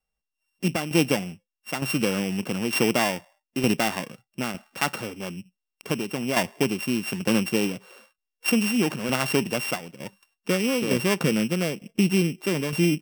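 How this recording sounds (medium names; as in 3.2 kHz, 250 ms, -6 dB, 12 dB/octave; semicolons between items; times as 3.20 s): a buzz of ramps at a fixed pitch in blocks of 16 samples; tremolo saw down 1.1 Hz, depth 60%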